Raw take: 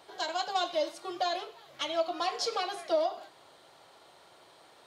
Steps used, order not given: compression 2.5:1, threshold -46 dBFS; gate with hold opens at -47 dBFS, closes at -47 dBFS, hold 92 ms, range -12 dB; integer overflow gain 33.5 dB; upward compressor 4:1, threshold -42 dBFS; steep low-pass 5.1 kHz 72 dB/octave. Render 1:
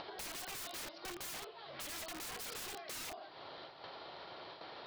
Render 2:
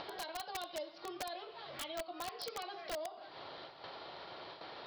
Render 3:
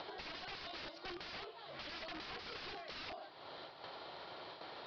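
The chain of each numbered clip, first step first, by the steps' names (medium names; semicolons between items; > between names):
gate with hold > steep low-pass > integer overflow > upward compressor > compression; gate with hold > steep low-pass > compression > upward compressor > integer overflow; gate with hold > upward compressor > integer overflow > compression > steep low-pass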